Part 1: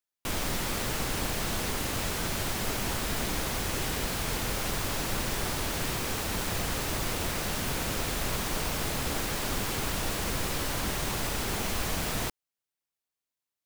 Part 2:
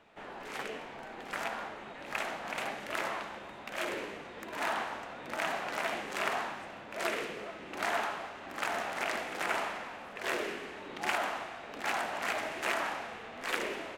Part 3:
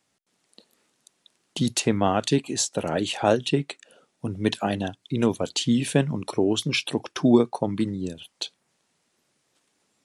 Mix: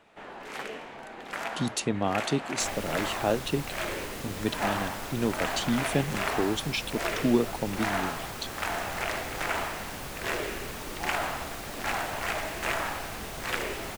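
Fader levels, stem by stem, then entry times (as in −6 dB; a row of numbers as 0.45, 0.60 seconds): −8.5, +2.0, −6.0 decibels; 2.35, 0.00, 0.00 seconds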